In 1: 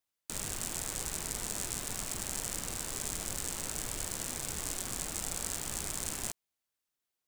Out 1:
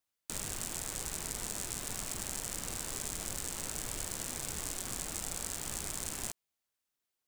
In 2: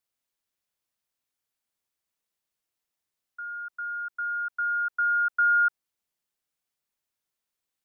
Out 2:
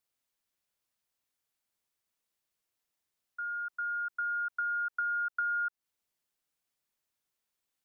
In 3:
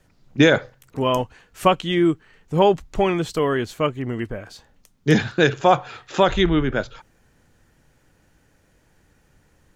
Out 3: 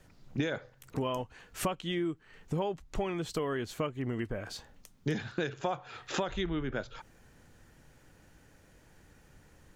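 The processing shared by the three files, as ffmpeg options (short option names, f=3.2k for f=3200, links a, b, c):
-af "acompressor=threshold=-31dB:ratio=6"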